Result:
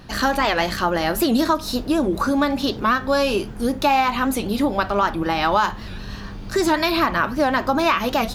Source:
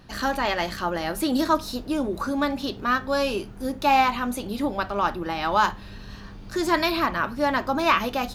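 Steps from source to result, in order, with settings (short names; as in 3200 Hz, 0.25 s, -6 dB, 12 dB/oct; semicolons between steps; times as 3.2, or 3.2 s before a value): compressor, threshold -22 dBFS, peak gain reduction 8 dB; record warp 78 rpm, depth 160 cents; gain +7.5 dB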